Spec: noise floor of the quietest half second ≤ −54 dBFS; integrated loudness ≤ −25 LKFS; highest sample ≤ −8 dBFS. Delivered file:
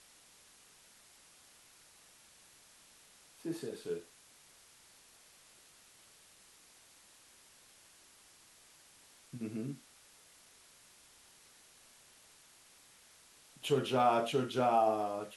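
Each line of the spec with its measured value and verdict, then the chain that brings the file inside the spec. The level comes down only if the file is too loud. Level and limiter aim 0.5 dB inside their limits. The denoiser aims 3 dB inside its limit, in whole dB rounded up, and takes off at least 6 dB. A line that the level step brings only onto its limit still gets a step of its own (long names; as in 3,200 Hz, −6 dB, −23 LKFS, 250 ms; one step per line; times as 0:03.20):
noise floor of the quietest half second −62 dBFS: in spec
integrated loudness −34.0 LKFS: in spec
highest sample −17.5 dBFS: in spec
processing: no processing needed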